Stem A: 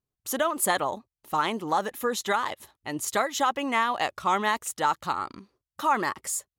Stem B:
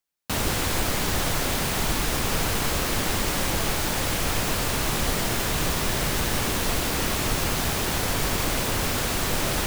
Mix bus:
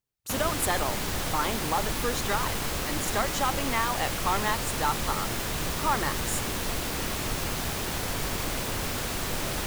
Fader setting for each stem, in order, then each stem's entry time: −3.5, −5.5 decibels; 0.00, 0.00 seconds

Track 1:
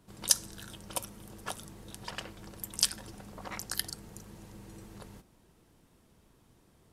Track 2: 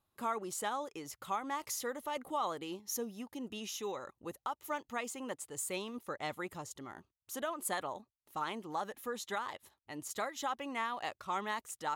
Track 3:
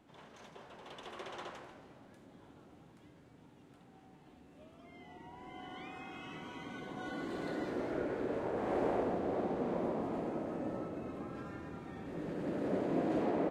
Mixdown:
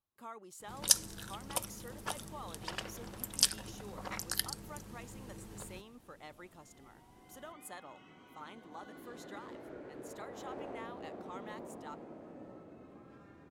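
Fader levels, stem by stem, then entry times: −0.5, −12.0, −11.5 decibels; 0.60, 0.00, 1.75 seconds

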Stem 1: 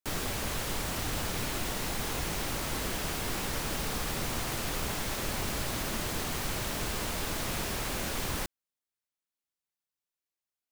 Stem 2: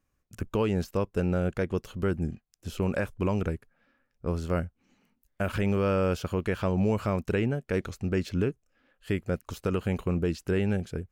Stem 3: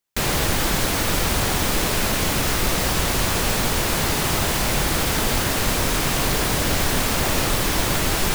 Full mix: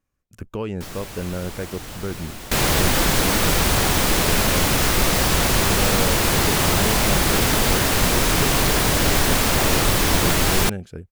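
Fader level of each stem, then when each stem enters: −2.5, −1.5, +2.5 decibels; 0.75, 0.00, 2.35 seconds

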